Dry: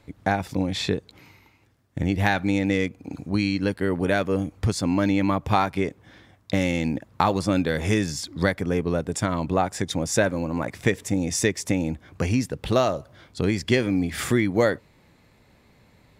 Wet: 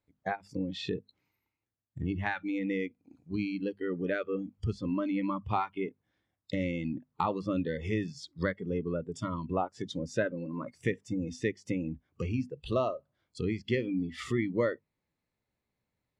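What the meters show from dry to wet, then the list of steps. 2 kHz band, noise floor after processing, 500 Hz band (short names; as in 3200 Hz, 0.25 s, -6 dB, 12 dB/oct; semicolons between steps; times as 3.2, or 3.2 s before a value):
-10.5 dB, under -85 dBFS, -8.5 dB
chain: notches 50/100/150/200/250 Hz; spectral noise reduction 20 dB; treble ducked by the level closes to 2400 Hz, closed at -22 dBFS; gain -8 dB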